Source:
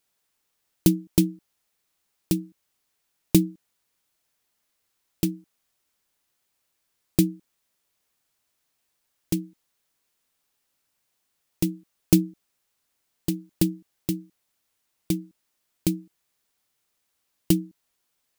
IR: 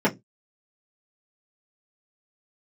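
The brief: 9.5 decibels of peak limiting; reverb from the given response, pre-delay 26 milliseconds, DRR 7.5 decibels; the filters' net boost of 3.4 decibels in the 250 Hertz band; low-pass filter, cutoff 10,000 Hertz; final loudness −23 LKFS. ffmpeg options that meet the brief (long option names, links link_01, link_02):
-filter_complex "[0:a]lowpass=10000,equalizer=frequency=250:width_type=o:gain=5.5,alimiter=limit=-10.5dB:level=0:latency=1,asplit=2[link_01][link_02];[1:a]atrim=start_sample=2205,adelay=26[link_03];[link_02][link_03]afir=irnorm=-1:irlink=0,volume=-23.5dB[link_04];[link_01][link_04]amix=inputs=2:normalize=0,volume=3dB"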